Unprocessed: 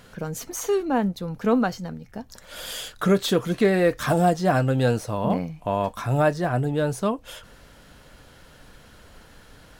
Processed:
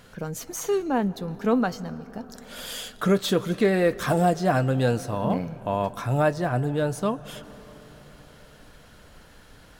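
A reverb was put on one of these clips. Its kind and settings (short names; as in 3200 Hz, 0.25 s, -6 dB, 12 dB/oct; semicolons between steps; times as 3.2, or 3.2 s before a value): digital reverb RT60 4.9 s, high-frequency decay 0.4×, pre-delay 95 ms, DRR 18 dB; gain -1.5 dB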